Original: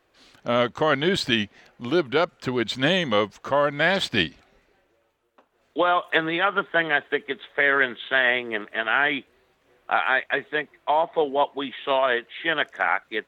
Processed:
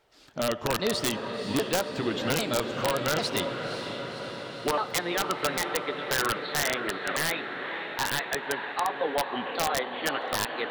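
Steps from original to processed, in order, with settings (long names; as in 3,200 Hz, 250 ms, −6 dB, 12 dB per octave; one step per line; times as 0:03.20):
pitch shifter swept by a sawtooth −7 semitones, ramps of 987 ms
downward compressor 1.5 to 1, threshold −31 dBFS, peak gain reduction 6 dB
change of speed 1.24×
feedback delay with all-pass diffusion 530 ms, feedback 69%, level −7.5 dB
convolution reverb RT60 5.1 s, pre-delay 38 ms, DRR 12.5 dB
wrap-around overflow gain 16.5 dB
parametric band 2,100 Hz −3.5 dB 0.77 octaves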